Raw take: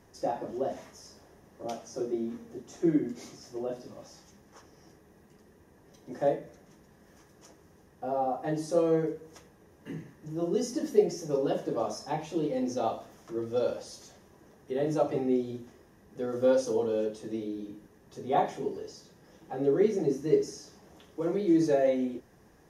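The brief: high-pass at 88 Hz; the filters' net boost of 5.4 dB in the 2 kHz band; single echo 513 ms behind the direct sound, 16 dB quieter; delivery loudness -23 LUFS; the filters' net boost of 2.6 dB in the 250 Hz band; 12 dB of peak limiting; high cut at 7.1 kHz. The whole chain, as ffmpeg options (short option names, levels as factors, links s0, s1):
-af "highpass=88,lowpass=7100,equalizer=f=250:t=o:g=3.5,equalizer=f=2000:t=o:g=6.5,alimiter=limit=0.0891:level=0:latency=1,aecho=1:1:513:0.158,volume=2.82"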